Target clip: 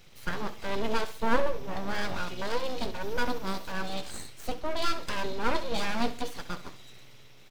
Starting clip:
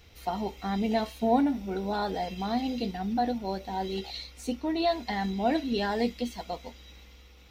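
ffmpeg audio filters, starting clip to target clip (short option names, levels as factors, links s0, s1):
-filter_complex "[0:a]asettb=1/sr,asplit=3[s0][s1][s2];[s0]atrim=end=3.014[s3];[s1]atrim=start=3.01:end=3.72,asetpts=PTS-STARTPTS,afade=t=in:d=0.004:c=qsin,afade=t=out:st=0.706:d=0.004:c=qsin,highshelf=f=5200:g=9[s4];[s2]atrim=start=3.716[s5];[s3][s4]acrossfade=d=0.004:c1=hsin:c2=qsin[s6];[s6][s5]acrossfade=d=0.004:c1=qsin:c2=hsin,aeval=exprs='abs(val(0))':c=same,aecho=1:1:66|132|198:0.188|0.0697|0.0258,volume=1.19"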